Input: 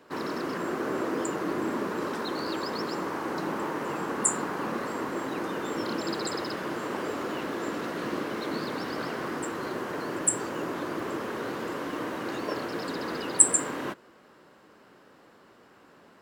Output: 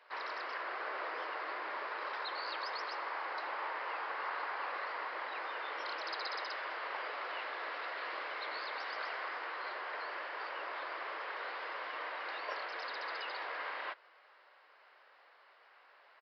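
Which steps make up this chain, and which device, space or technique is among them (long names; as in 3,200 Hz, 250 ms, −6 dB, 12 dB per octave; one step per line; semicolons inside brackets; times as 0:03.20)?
musical greeting card (downsampling to 11,025 Hz; high-pass filter 620 Hz 24 dB per octave; parametric band 2,100 Hz +6 dB 0.55 octaves)
level −5 dB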